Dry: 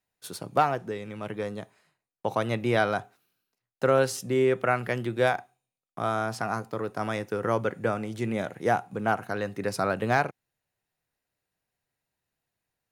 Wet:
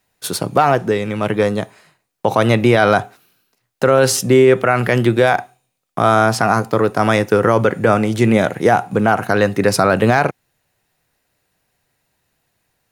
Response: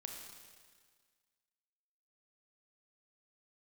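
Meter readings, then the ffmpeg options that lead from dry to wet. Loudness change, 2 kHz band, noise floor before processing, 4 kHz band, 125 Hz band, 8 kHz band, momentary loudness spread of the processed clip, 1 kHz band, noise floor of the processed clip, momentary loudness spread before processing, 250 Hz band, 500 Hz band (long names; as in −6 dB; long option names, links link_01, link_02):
+13.0 dB, +12.0 dB, below −85 dBFS, +14.0 dB, +14.5 dB, +16.0 dB, 7 LU, +11.5 dB, −70 dBFS, 10 LU, +14.5 dB, +13.0 dB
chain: -af "alimiter=level_in=17.5dB:limit=-1dB:release=50:level=0:latency=1,volume=-1dB"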